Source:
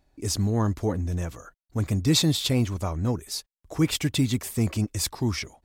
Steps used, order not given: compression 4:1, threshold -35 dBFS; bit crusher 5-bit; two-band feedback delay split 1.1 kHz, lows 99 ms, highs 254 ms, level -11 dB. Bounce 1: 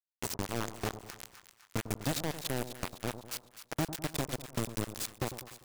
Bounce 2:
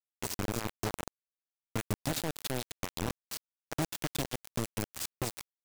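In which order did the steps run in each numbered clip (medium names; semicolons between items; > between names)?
compression > bit crusher > two-band feedback delay; compression > two-band feedback delay > bit crusher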